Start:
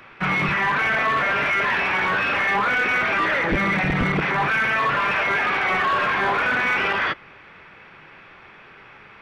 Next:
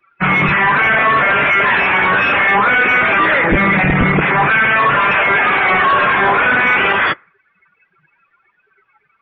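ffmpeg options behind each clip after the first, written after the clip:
ffmpeg -i in.wav -af "afftdn=noise_reduction=32:noise_floor=-35,volume=8.5dB" out.wav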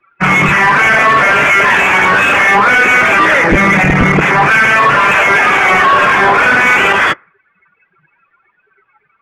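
ffmpeg -i in.wav -af "bass=frequency=250:gain=-1,treble=frequency=4000:gain=3,adynamicsmooth=sensitivity=1.5:basefreq=3400,volume=4dB" out.wav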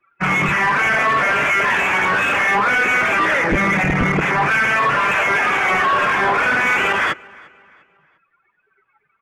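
ffmpeg -i in.wav -filter_complex "[0:a]asplit=2[link_01][link_02];[link_02]adelay=349,lowpass=frequency=4800:poles=1,volume=-24dB,asplit=2[link_03][link_04];[link_04]adelay=349,lowpass=frequency=4800:poles=1,volume=0.42,asplit=2[link_05][link_06];[link_06]adelay=349,lowpass=frequency=4800:poles=1,volume=0.42[link_07];[link_01][link_03][link_05][link_07]amix=inputs=4:normalize=0,volume=-8dB" out.wav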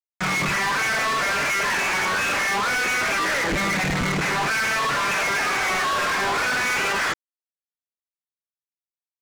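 ffmpeg -i in.wav -af "aresample=16000,acrusher=bits=4:mix=0:aa=0.000001,aresample=44100,volume=21.5dB,asoftclip=hard,volume=-21.5dB" out.wav

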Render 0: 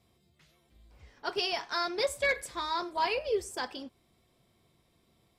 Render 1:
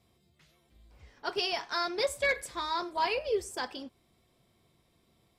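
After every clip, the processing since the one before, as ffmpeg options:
ffmpeg -i in.wav -af anull out.wav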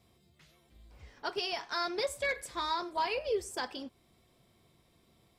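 ffmpeg -i in.wav -af "alimiter=level_in=1dB:limit=-24dB:level=0:latency=1:release=481,volume=-1dB,volume=2dB" out.wav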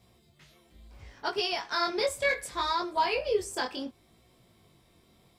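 ffmpeg -i in.wav -af "flanger=delay=16.5:depth=6.9:speed=0.69,volume=7.5dB" out.wav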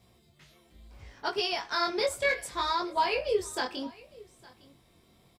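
ffmpeg -i in.wav -af "aecho=1:1:858:0.075" out.wav

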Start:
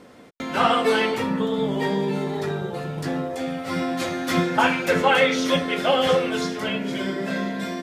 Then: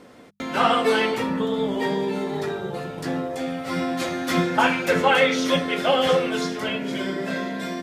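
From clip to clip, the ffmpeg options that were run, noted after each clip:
ffmpeg -i in.wav -af "bandreject=frequency=50:width_type=h:width=6,bandreject=frequency=100:width_type=h:width=6,bandreject=frequency=150:width_type=h:width=6,bandreject=frequency=200:width_type=h:width=6" out.wav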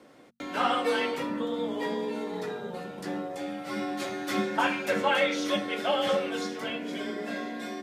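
ffmpeg -i in.wav -af "afreqshift=31,volume=-7dB" out.wav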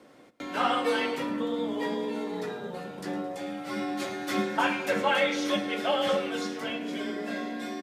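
ffmpeg -i in.wav -af "aecho=1:1:109|218|327|436|545|654:0.141|0.0833|0.0492|0.029|0.0171|0.0101" out.wav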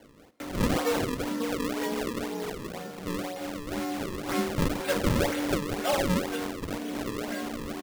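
ffmpeg -i in.wav -af "acrusher=samples=34:mix=1:aa=0.000001:lfo=1:lforange=54.4:lforate=2" out.wav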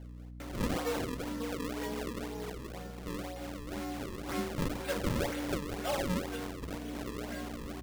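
ffmpeg -i in.wav -af "aeval=exprs='val(0)+0.0126*(sin(2*PI*60*n/s)+sin(2*PI*2*60*n/s)/2+sin(2*PI*3*60*n/s)/3+sin(2*PI*4*60*n/s)/4+sin(2*PI*5*60*n/s)/5)':channel_layout=same,volume=-7dB" out.wav

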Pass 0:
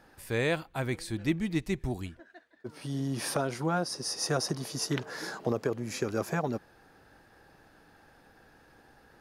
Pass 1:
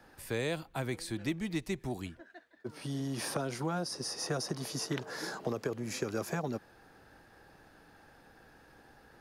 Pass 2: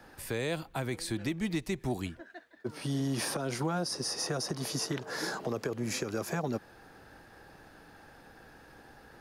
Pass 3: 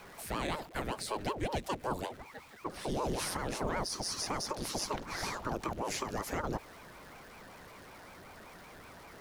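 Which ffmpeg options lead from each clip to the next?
ffmpeg -i in.wav -filter_complex "[0:a]acrossover=split=110|430|1300|3200[link_01][link_02][link_03][link_04][link_05];[link_01]acompressor=threshold=-52dB:ratio=4[link_06];[link_02]acompressor=threshold=-35dB:ratio=4[link_07];[link_03]acompressor=threshold=-38dB:ratio=4[link_08];[link_04]acompressor=threshold=-46dB:ratio=4[link_09];[link_05]acompressor=threshold=-38dB:ratio=4[link_10];[link_06][link_07][link_08][link_09][link_10]amix=inputs=5:normalize=0" out.wav
ffmpeg -i in.wav -af "alimiter=level_in=3dB:limit=-24dB:level=0:latency=1:release=164,volume=-3dB,volume=4.5dB" out.wav
ffmpeg -i in.wav -af "aeval=exprs='val(0)+0.5*0.00376*sgn(val(0))':channel_layout=same,aeval=exprs='val(0)*sin(2*PI*430*n/s+430*0.8/5.3*sin(2*PI*5.3*n/s))':channel_layout=same" out.wav

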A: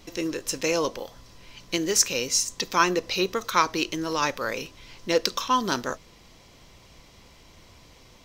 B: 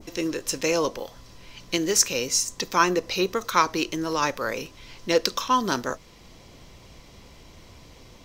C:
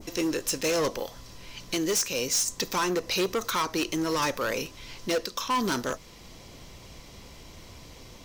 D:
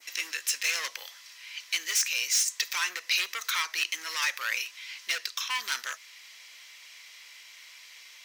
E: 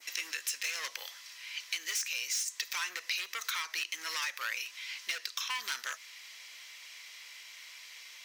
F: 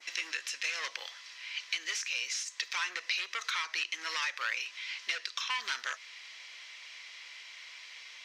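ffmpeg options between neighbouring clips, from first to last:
ffmpeg -i in.wav -filter_complex "[0:a]adynamicequalizer=threshold=0.01:dfrequency=3400:dqfactor=0.91:tfrequency=3400:tqfactor=0.91:attack=5:release=100:ratio=0.375:range=2:mode=cutabove:tftype=bell,acrossover=split=630[link_01][link_02];[link_01]acompressor=mode=upward:threshold=-44dB:ratio=2.5[link_03];[link_03][link_02]amix=inputs=2:normalize=0,volume=1.5dB" out.wav
ffmpeg -i in.wav -af "highshelf=frequency=5700:gain=5,alimiter=limit=-9.5dB:level=0:latency=1:release=370,volume=23.5dB,asoftclip=hard,volume=-23.5dB,volume=1dB" out.wav
ffmpeg -i in.wav -af "highpass=frequency=2000:width_type=q:width=2.1" out.wav
ffmpeg -i in.wav -af "acompressor=threshold=-32dB:ratio=6" out.wav
ffmpeg -i in.wav -af "highpass=220,lowpass=4900,volume=2.5dB" out.wav

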